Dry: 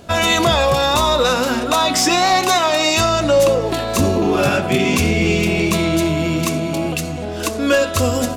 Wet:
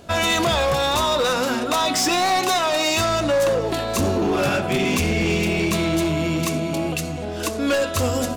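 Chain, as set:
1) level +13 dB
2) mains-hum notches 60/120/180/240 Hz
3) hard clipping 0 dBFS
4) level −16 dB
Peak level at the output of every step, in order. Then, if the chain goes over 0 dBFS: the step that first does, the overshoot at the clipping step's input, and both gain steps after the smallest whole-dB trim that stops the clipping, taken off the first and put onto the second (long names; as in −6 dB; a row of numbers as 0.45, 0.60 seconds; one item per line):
+6.0, +7.5, 0.0, −16.0 dBFS
step 1, 7.5 dB
step 1 +5 dB, step 4 −8 dB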